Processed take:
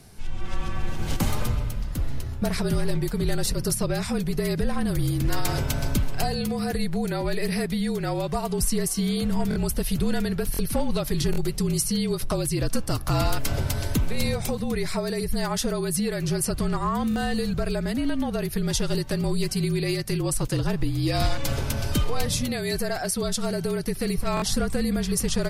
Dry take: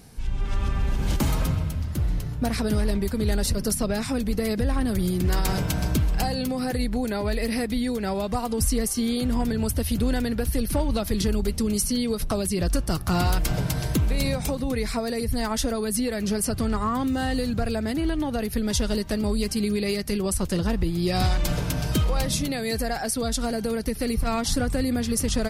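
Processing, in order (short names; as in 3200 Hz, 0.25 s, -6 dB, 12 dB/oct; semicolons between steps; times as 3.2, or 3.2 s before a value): frequency shift -42 Hz; stuck buffer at 9.49/10.52/11.31/17.09/24.35, samples 1024, times 2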